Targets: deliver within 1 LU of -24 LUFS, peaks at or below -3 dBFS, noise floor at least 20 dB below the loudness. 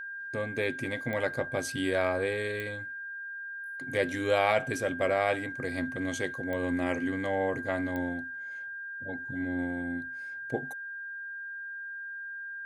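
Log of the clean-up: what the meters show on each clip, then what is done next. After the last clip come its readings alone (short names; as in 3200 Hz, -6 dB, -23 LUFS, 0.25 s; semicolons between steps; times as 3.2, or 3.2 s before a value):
clicks 4; steady tone 1600 Hz; tone level -37 dBFS; loudness -32.0 LUFS; peak -11.0 dBFS; loudness target -24.0 LUFS
-> de-click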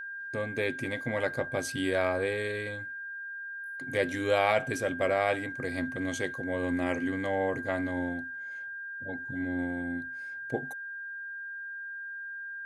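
clicks 0; steady tone 1600 Hz; tone level -37 dBFS
-> notch 1600 Hz, Q 30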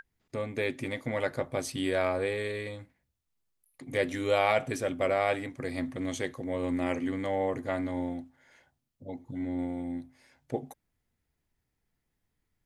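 steady tone none; loudness -32.0 LUFS; peak -11.5 dBFS; loudness target -24.0 LUFS
-> gain +8 dB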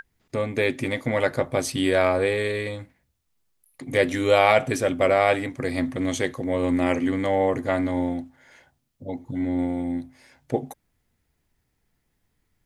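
loudness -24.0 LUFS; peak -3.5 dBFS; noise floor -74 dBFS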